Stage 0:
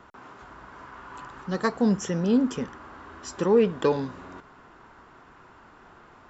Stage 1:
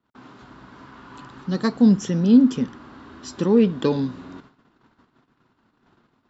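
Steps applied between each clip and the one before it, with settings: gate -49 dBFS, range -27 dB; ten-band EQ 125 Hz +8 dB, 250 Hz +11 dB, 4000 Hz +10 dB; gain -3.5 dB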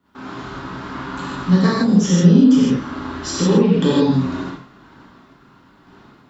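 limiter -14 dBFS, peak gain reduction 8.5 dB; compressor 2:1, threshold -30 dBFS, peak gain reduction 7.5 dB; non-linear reverb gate 0.19 s flat, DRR -7.5 dB; gain +6.5 dB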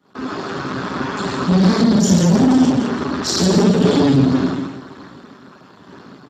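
soft clip -19.5 dBFS, distortion -6 dB; feedback echo 0.168 s, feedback 38%, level -7 dB; gain +9 dB; Speex 8 kbps 32000 Hz

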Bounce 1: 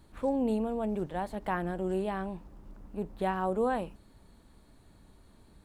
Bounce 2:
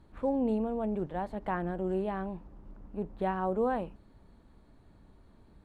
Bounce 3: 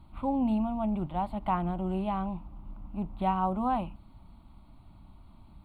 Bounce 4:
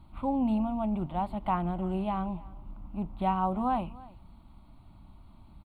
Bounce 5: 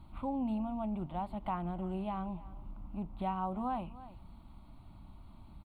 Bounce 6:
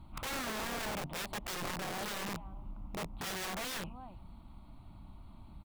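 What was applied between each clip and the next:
LPF 1800 Hz 6 dB/oct
fixed phaser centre 1700 Hz, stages 6; gain +6.5 dB
echo 0.302 s -21 dB
compressor 1.5:1, threshold -45 dBFS, peak gain reduction 8 dB
wrapped overs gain 35 dB; gain +1 dB

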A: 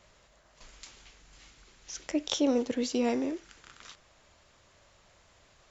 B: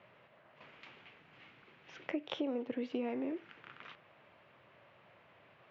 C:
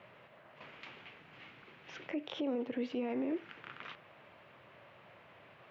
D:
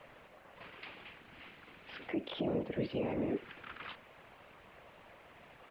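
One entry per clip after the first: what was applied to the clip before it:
elliptic band-pass 120–2700 Hz, stop band 60 dB; compressor 8:1, threshold -35 dBFS, peak gain reduction 13 dB; gain +1.5 dB
limiter -32.5 dBFS, peak gain reduction 10.5 dB; gain +4.5 dB
downsampling 11025 Hz; whisperiser; added noise pink -76 dBFS; gain +1 dB

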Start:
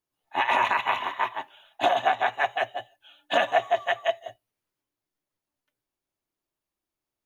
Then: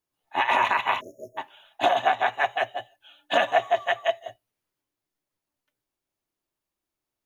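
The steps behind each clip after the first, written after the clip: spectral delete 1–1.38, 660–5200 Hz; gain +1 dB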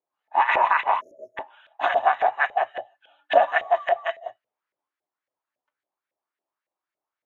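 LFO band-pass saw up 3.6 Hz 530–2000 Hz; gain +7.5 dB

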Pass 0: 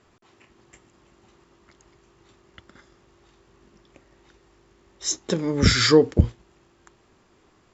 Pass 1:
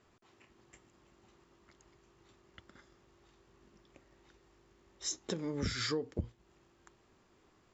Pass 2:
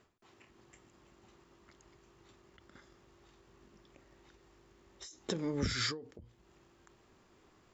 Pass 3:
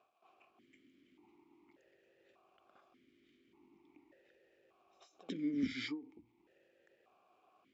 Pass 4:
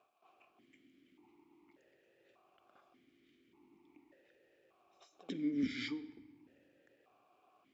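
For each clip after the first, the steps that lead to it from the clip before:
compressor 4:1, threshold -26 dBFS, peak gain reduction 14.5 dB; gain -8 dB
ending taper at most 110 dB/s; gain +2.5 dB
crackle 580/s -61 dBFS; reverse echo 94 ms -16 dB; vowel sequencer 1.7 Hz; gain +6.5 dB
shoebox room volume 1300 m³, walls mixed, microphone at 0.35 m

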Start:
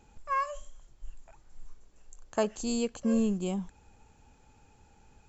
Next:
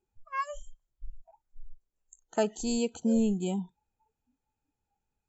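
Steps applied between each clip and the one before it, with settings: spectral noise reduction 27 dB; gain +1 dB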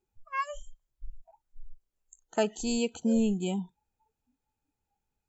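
dynamic EQ 2600 Hz, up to +5 dB, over -54 dBFS, Q 1.5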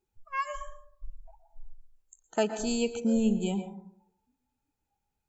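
plate-style reverb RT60 0.66 s, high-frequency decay 0.25×, pre-delay 0.105 s, DRR 8.5 dB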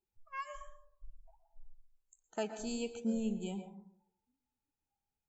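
flange 1.3 Hz, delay 4.3 ms, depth 4.7 ms, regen +85%; gain -5 dB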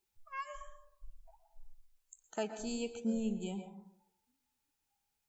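mismatched tape noise reduction encoder only

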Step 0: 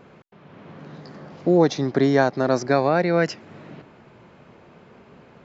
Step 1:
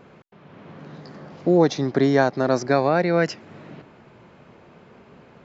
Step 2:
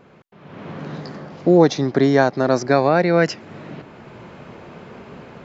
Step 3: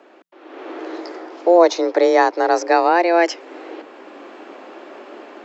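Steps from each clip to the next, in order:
nothing audible
AGC gain up to 11 dB; gain -1 dB
frequency shift +170 Hz; gain +1 dB

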